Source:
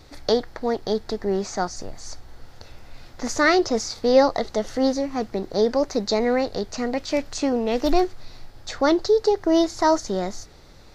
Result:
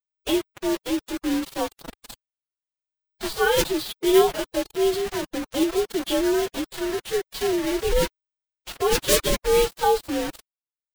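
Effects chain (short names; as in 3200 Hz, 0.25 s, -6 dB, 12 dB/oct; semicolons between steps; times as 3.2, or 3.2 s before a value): inharmonic rescaling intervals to 89%; bit-crush 5-bit; formant-preserving pitch shift +6.5 st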